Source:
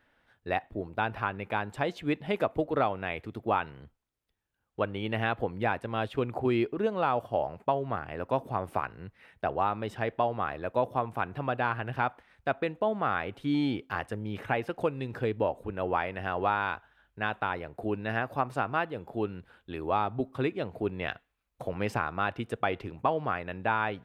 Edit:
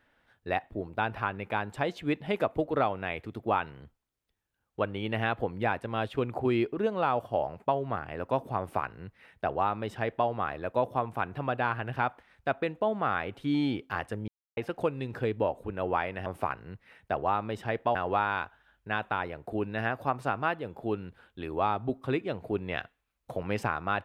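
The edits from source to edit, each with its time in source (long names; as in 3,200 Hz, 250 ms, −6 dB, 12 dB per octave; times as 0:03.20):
0:08.59–0:10.28: duplicate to 0:16.26
0:14.28–0:14.57: silence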